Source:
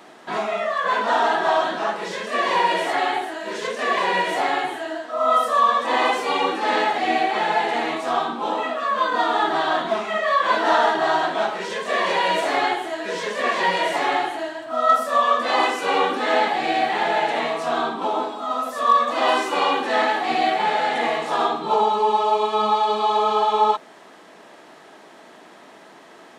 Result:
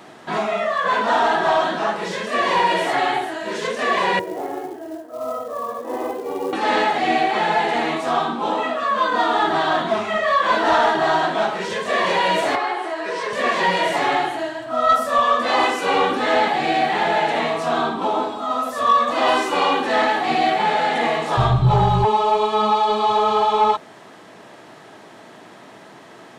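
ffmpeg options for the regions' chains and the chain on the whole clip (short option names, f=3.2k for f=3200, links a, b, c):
-filter_complex "[0:a]asettb=1/sr,asplit=3[a][b][c];[a]atrim=end=4.194[d];[b]atrim=start=4.19:end=6.53,asetpts=PTS-STARTPTS,afade=t=in:d=0.004:c=qsin,afade=t=out:st=2.336:d=0.004:c=qsin,bandpass=f=380:t=q:w=2,acrusher=bits=5:mode=log:mix=0:aa=0.000001[e];[c]atrim=start=6.526[f];[d][e]acrossfade=d=0.004:c1=hsin:c2=qsin[g];[g][f]acrossfade=d=0.004:c1=qsin:c2=hsin,asettb=1/sr,asplit=3[h][i][j];[h]atrim=end=12.554[k];[i]atrim=start=12.55:end=13.33,asetpts=PTS-STARTPTS,afade=t=in:d=0.004:c=qsin,afade=t=out:st=0.776:d=0.004:c=qsin,highpass=f=240:w=0.5412,highpass=f=240:w=1.3066,equalizer=f=250:t=q:w=4:g=-10,equalizer=f=1.1k:t=q:w=4:g=7,equalizer=f=3.4k:t=q:w=4:g=-6,equalizer=f=6.9k:t=q:w=4:g=-8,lowpass=f=9.5k:w=0.5412,lowpass=f=9.5k:w=1.3066,acompressor=threshold=-24dB:ratio=2:attack=3.2:release=140:knee=1:detection=peak[l];[j]atrim=start=13.326[m];[k][l]acrossfade=d=0.004:c1=hsin:c2=qsin[n];[n][m]acrossfade=d=0.004:c1=qsin:c2=hsin,asettb=1/sr,asplit=3[o][p][q];[o]atrim=end=21.374[r];[p]atrim=start=21.37:end=22.05,asetpts=PTS-STARTPTS,afade=t=in:d=0.004:c=qsin,afade=t=out:st=0.676:d=0.004:c=qsin,aeval=exprs='val(0)+0.00891*(sin(2*PI*50*n/s)+sin(2*PI*2*50*n/s)/2+sin(2*PI*3*50*n/s)/3+sin(2*PI*4*50*n/s)/4+sin(2*PI*5*50*n/s)/5)':c=same,lowshelf=f=210:t=q:w=3:g=11,afreqshift=-28[s];[q]atrim=start=22.046[t];[r][s]acrossfade=d=0.004:c1=hsin:c2=qsin[u];[u][t]acrossfade=d=0.004:c1=qsin:c2=hsin,equalizer=f=110:t=o:w=1:g=15,acontrast=88,volume=-5dB"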